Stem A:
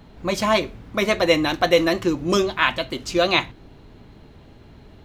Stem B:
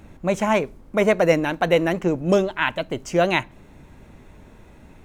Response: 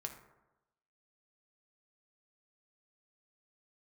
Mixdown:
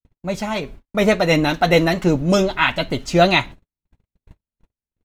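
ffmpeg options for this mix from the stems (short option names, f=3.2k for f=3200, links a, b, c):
-filter_complex "[0:a]highpass=f=630:p=1,aecho=1:1:7.2:0.84,volume=-10dB[a];[1:a]lowshelf=f=150:g=9.5,tremolo=f=2.8:d=0.39,adelay=1.8,volume=-4.5dB[b];[a][b]amix=inputs=2:normalize=0,agate=range=-56dB:threshold=-38dB:ratio=16:detection=peak,dynaudnorm=f=360:g=5:m=11dB"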